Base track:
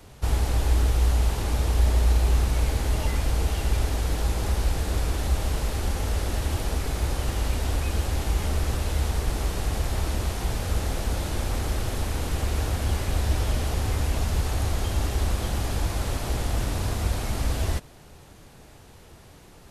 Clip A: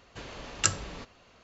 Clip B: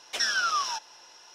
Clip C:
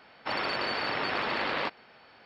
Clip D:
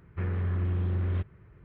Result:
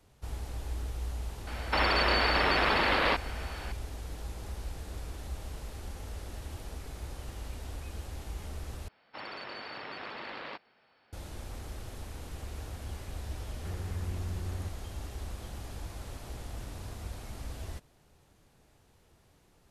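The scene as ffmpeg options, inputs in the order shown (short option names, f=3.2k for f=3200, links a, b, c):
-filter_complex "[3:a]asplit=2[a][b];[0:a]volume=-15dB[c];[a]alimiter=level_in=29dB:limit=-1dB:release=50:level=0:latency=1[d];[c]asplit=2[e][f];[e]atrim=end=8.884[g];[b]atrim=end=2.25,asetpts=PTS-STARTPTS,volume=-11.5dB[h];[f]atrim=start=11.126[i];[d]atrim=end=2.25,asetpts=PTS-STARTPTS,volume=-17dB,afade=t=in:d=0.004:c=hsin,afade=t=out:st=2.246:d=0.004:c=hsin,adelay=1470[j];[4:a]atrim=end=1.64,asetpts=PTS-STARTPTS,volume=-9dB,afade=t=in:d=0.004:c=hsin,afade=t=out:st=1.636:d=0.004:c=hsin,adelay=13470[k];[g][h]acrossfade=d=0.004:c1=hsin:c2=hsin[l];[l][i]acrossfade=d=0.004:c1=hsin:c2=hsin[m];[m][j][k]amix=inputs=3:normalize=0"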